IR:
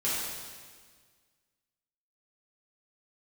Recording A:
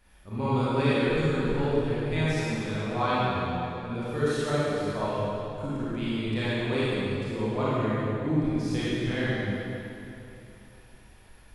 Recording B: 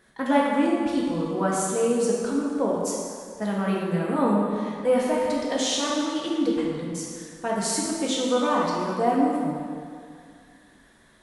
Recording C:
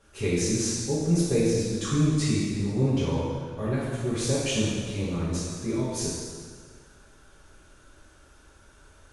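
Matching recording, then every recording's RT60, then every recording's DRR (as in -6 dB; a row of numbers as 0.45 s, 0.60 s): C; 3.0 s, 2.3 s, 1.6 s; -10.5 dB, -4.5 dB, -10.0 dB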